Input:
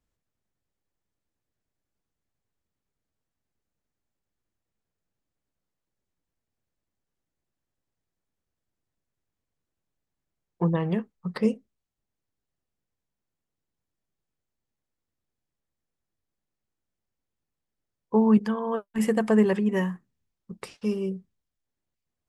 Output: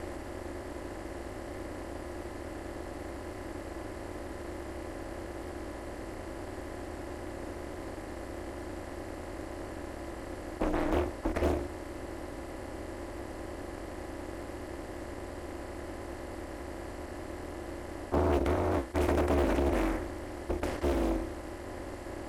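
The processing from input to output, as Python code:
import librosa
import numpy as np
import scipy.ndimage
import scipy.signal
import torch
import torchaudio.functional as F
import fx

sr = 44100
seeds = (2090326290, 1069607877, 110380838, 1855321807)

y = fx.bin_compress(x, sr, power=0.2)
y = y * np.sin(2.0 * np.pi * 140.0 * np.arange(len(y)) / sr)
y = fx.doppler_dist(y, sr, depth_ms=0.72)
y = F.gain(torch.from_numpy(y), -8.5).numpy()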